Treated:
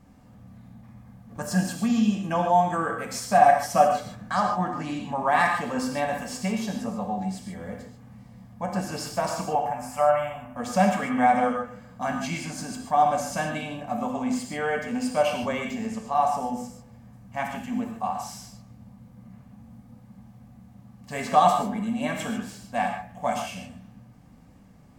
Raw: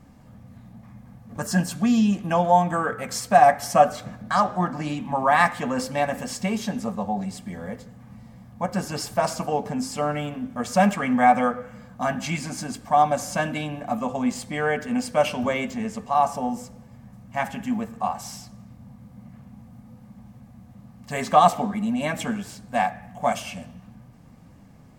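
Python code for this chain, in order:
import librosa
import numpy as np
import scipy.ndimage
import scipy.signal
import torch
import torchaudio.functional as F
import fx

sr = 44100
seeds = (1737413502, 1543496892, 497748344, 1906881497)

y = fx.curve_eq(x, sr, hz=(120.0, 390.0, 590.0, 890.0, 2700.0, 3900.0, 12000.0), db=(0, -21, 6, 8, 0, -13, 2), at=(9.55, 10.57))
y = fx.rev_gated(y, sr, seeds[0], gate_ms=170, shape='flat', drr_db=2.5)
y = y * librosa.db_to_amplitude(-4.5)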